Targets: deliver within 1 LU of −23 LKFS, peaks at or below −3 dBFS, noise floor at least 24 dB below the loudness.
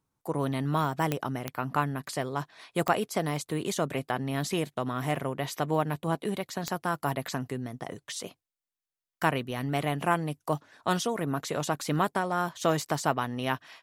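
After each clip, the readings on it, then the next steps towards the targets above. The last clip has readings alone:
number of clicks 4; integrated loudness −30.5 LKFS; sample peak −9.5 dBFS; target loudness −23.0 LKFS
→ click removal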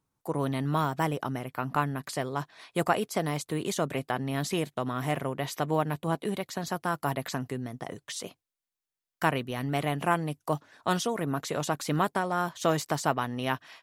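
number of clicks 0; integrated loudness −30.5 LKFS; sample peak −9.5 dBFS; target loudness −23.0 LKFS
→ level +7.5 dB
brickwall limiter −3 dBFS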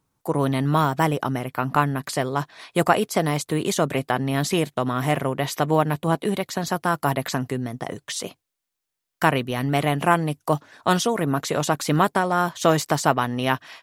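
integrated loudness −23.0 LKFS; sample peak −3.0 dBFS; background noise floor −83 dBFS

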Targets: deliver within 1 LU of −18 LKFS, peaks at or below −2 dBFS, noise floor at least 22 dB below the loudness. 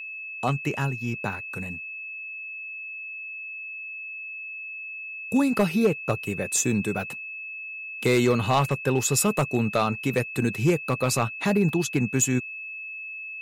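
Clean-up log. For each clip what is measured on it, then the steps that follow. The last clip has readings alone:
share of clipped samples 0.3%; peaks flattened at −13.5 dBFS; interfering tone 2,600 Hz; level of the tone −34 dBFS; integrated loudness −26.5 LKFS; sample peak −13.5 dBFS; target loudness −18.0 LKFS
→ clipped peaks rebuilt −13.5 dBFS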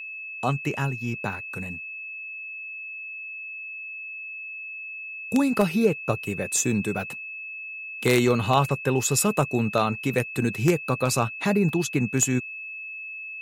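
share of clipped samples 0.0%; interfering tone 2,600 Hz; level of the tone −34 dBFS
→ notch filter 2,600 Hz, Q 30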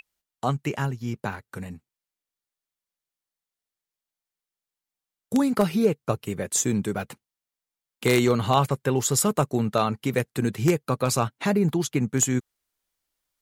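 interfering tone none found; integrated loudness −24.5 LKFS; sample peak −4.5 dBFS; target loudness −18.0 LKFS
→ level +6.5 dB
brickwall limiter −2 dBFS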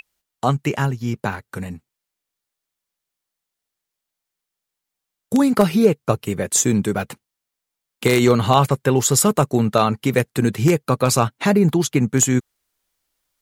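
integrated loudness −18.5 LKFS; sample peak −2.0 dBFS; background noise floor −83 dBFS

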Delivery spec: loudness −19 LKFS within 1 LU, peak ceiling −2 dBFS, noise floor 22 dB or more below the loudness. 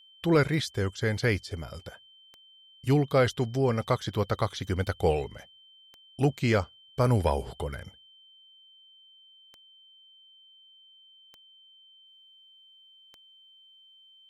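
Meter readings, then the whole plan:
number of clicks 8; interfering tone 3,100 Hz; level of the tone −54 dBFS; integrated loudness −28.0 LKFS; sample peak −13.0 dBFS; target loudness −19.0 LKFS
→ click removal
notch filter 3,100 Hz, Q 30
level +9 dB

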